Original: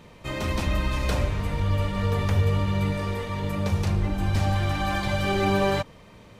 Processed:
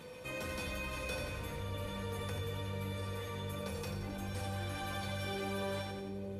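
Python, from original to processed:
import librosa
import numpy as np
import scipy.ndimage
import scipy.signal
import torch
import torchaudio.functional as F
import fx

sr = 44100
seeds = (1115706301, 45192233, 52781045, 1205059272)

p1 = fx.highpass(x, sr, hz=110.0, slope=6)
p2 = fx.peak_eq(p1, sr, hz=11000.0, db=9.5, octaves=0.5)
p3 = fx.comb_fb(p2, sr, f0_hz=500.0, decay_s=0.26, harmonics='odd', damping=0.0, mix_pct=90)
p4 = p3 + fx.echo_split(p3, sr, split_hz=520.0, low_ms=620, high_ms=88, feedback_pct=52, wet_db=-7.5, dry=0)
p5 = fx.env_flatten(p4, sr, amount_pct=50)
y = p5 * librosa.db_to_amplitude(2.0)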